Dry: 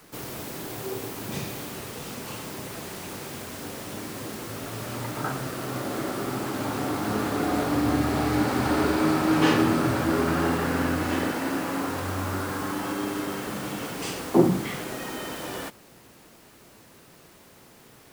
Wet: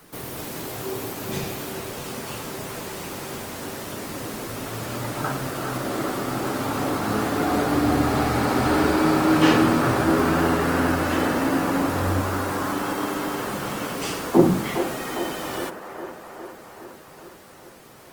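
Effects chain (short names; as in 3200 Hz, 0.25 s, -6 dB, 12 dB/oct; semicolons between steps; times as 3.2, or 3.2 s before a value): de-hum 100.8 Hz, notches 5; 11.31–12.21 low shelf 300 Hz +6.5 dB; band-limited delay 0.409 s, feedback 67%, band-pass 810 Hz, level -5.5 dB; gain +3 dB; Opus 24 kbps 48000 Hz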